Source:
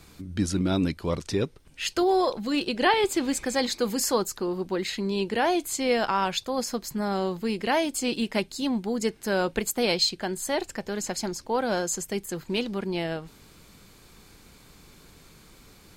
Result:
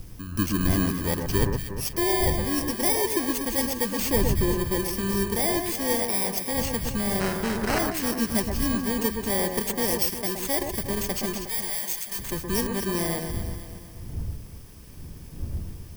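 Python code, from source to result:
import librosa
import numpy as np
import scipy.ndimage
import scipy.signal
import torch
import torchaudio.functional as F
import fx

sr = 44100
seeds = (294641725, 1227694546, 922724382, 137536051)

p1 = fx.bit_reversed(x, sr, seeds[0], block=32)
p2 = fx.dmg_wind(p1, sr, seeds[1], corner_hz=96.0, level_db=-36.0)
p3 = fx.low_shelf(p2, sr, hz=380.0, db=9.0, at=(3.99, 4.52))
p4 = fx.rider(p3, sr, range_db=4, speed_s=0.5)
p5 = p3 + (p4 * 10.0 ** (1.5 / 20.0))
p6 = fx.sample_hold(p5, sr, seeds[2], rate_hz=3500.0, jitter_pct=0, at=(7.19, 7.78), fade=0.02)
p7 = fx.tone_stack(p6, sr, knobs='10-0-10', at=(11.46, 12.19))
p8 = fx.echo_alternate(p7, sr, ms=120, hz=1800.0, feedback_pct=69, wet_db=-5)
y = p8 * 10.0 ** (-7.5 / 20.0)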